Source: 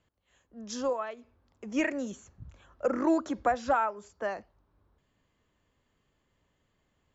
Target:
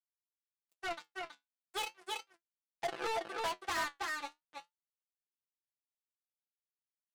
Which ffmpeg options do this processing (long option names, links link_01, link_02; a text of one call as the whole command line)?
ffmpeg -i in.wav -filter_complex "[0:a]aeval=exprs='val(0)+0.00126*(sin(2*PI*60*n/s)+sin(2*PI*2*60*n/s)/2+sin(2*PI*3*60*n/s)/3+sin(2*PI*4*60*n/s)/4+sin(2*PI*5*60*n/s)/5)':channel_layout=same,asetrate=60591,aresample=44100,atempo=0.727827,adynamicequalizer=threshold=0.00224:dfrequency=580:dqfactor=7:tfrequency=580:tqfactor=7:attack=5:release=100:ratio=0.375:range=2:mode=boostabove:tftype=bell,acrusher=bits=3:mix=0:aa=0.5,highpass=frequency=390:poles=1,aecho=1:1:5.9:0.85,asplit=2[link_01][link_02];[link_02]aecho=0:1:325:0.473[link_03];[link_01][link_03]amix=inputs=2:normalize=0,asoftclip=type=tanh:threshold=-27.5dB,flanger=delay=6.7:depth=7.6:regen=57:speed=0.36:shape=triangular" out.wav